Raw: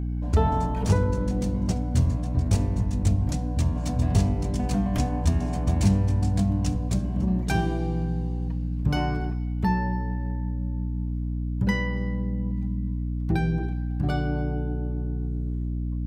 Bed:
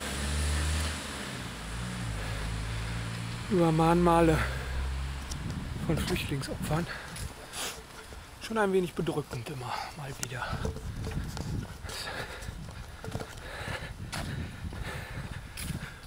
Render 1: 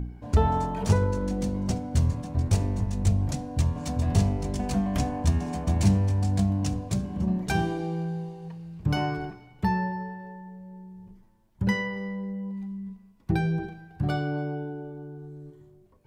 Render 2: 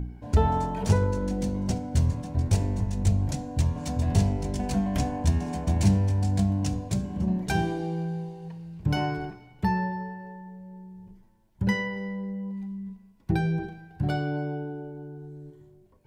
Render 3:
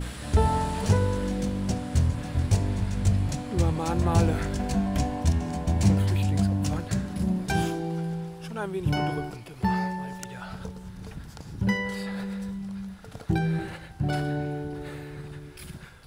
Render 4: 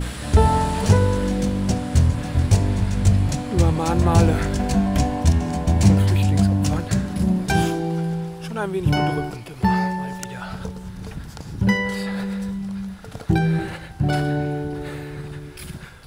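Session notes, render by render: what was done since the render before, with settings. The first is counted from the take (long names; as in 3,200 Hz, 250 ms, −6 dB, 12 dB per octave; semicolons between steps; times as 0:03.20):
hum removal 60 Hz, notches 11
notch filter 1,200 Hz, Q 9.1; hum removal 235.2 Hz, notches 33
mix in bed −5.5 dB
level +6.5 dB; brickwall limiter −3 dBFS, peak gain reduction 1 dB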